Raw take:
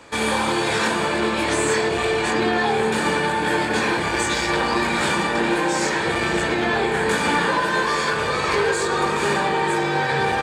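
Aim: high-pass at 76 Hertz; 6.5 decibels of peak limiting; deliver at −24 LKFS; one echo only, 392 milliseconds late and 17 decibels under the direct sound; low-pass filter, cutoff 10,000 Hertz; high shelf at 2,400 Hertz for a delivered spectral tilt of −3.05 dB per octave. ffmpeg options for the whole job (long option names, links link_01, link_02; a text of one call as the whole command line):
ffmpeg -i in.wav -af "highpass=76,lowpass=10000,highshelf=frequency=2400:gain=3.5,alimiter=limit=-13.5dB:level=0:latency=1,aecho=1:1:392:0.141,volume=-2dB" out.wav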